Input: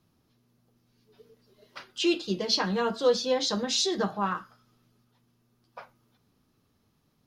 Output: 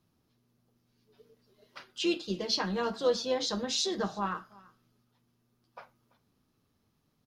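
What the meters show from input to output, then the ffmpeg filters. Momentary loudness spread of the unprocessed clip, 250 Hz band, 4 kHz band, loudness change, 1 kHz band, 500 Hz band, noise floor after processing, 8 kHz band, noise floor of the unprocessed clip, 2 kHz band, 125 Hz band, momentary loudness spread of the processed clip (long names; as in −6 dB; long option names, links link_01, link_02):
6 LU, −4.0 dB, −4.0 dB, −4.0 dB, −4.0 dB, −4.0 dB, −75 dBFS, −4.0 dB, −71 dBFS, −4.0 dB, −4.0 dB, 6 LU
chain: -filter_complex "[0:a]tremolo=f=150:d=0.261,asplit=2[link_01][link_02];[link_02]aecho=0:1:336:0.0668[link_03];[link_01][link_03]amix=inputs=2:normalize=0,volume=-3dB"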